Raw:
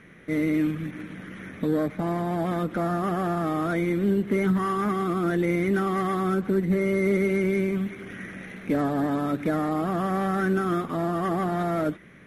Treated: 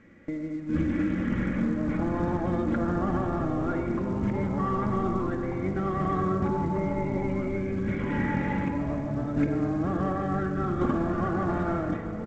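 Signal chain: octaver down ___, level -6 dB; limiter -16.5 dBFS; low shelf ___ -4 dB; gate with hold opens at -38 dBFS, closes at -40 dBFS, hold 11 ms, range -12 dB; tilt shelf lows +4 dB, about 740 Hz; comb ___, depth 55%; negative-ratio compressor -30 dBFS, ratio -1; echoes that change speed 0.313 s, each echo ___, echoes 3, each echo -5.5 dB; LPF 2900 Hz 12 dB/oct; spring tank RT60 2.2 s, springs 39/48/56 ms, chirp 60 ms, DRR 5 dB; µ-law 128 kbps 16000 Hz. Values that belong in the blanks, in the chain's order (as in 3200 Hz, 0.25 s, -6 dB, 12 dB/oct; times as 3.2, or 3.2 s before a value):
1 oct, 150 Hz, 3.6 ms, -5 st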